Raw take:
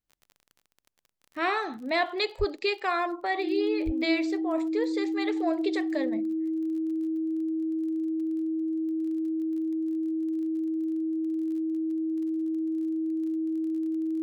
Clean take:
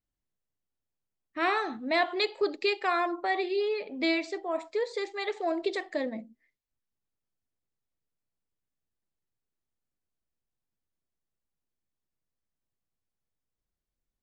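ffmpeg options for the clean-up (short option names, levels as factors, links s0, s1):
-filter_complex "[0:a]adeclick=t=4,bandreject=f=320:w=30,asplit=3[s0][s1][s2];[s0]afade=t=out:st=2.38:d=0.02[s3];[s1]highpass=f=140:w=0.5412,highpass=f=140:w=1.3066,afade=t=in:st=2.38:d=0.02,afade=t=out:st=2.5:d=0.02[s4];[s2]afade=t=in:st=2.5:d=0.02[s5];[s3][s4][s5]amix=inputs=3:normalize=0,asplit=3[s6][s7][s8];[s6]afade=t=out:st=3.85:d=0.02[s9];[s7]highpass=f=140:w=0.5412,highpass=f=140:w=1.3066,afade=t=in:st=3.85:d=0.02,afade=t=out:st=3.97:d=0.02[s10];[s8]afade=t=in:st=3.97:d=0.02[s11];[s9][s10][s11]amix=inputs=3:normalize=0,asetnsamples=n=441:p=0,asendcmd='6.93 volume volume 3.5dB',volume=1"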